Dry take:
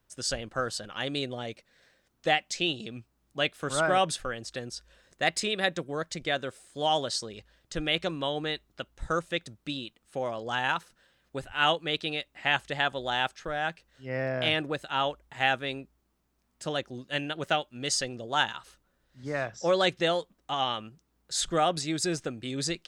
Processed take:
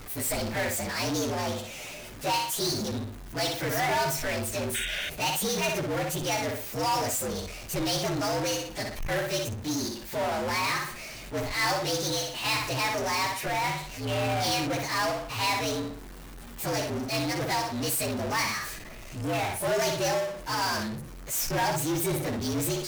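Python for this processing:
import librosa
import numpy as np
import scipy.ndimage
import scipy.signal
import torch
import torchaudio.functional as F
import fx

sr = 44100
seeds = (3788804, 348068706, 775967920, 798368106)

p1 = fx.partial_stretch(x, sr, pct=118)
p2 = p1 + fx.echo_filtered(p1, sr, ms=60, feedback_pct=20, hz=4900.0, wet_db=-8.5, dry=0)
p3 = fx.power_curve(p2, sr, exponent=0.35)
p4 = fx.spec_paint(p3, sr, seeds[0], shape='noise', start_s=4.74, length_s=0.36, low_hz=1400.0, high_hz=3800.0, level_db=-26.0)
y = p4 * 10.0 ** (-7.0 / 20.0)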